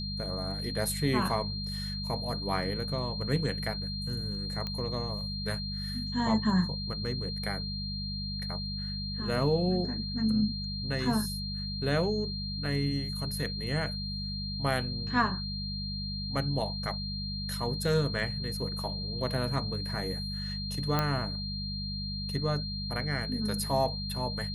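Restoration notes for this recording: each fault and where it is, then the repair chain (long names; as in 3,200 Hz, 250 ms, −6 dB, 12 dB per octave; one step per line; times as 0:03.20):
mains hum 50 Hz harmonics 4 −37 dBFS
whistle 4,200 Hz −37 dBFS
0:04.67: click −22 dBFS
0:20.99: click −13 dBFS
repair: click removal
notch filter 4,200 Hz, Q 30
hum removal 50 Hz, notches 4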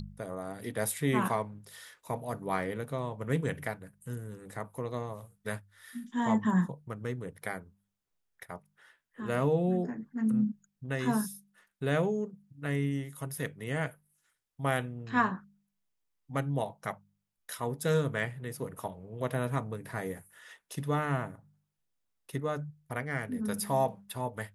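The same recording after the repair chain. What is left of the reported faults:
0:04.67: click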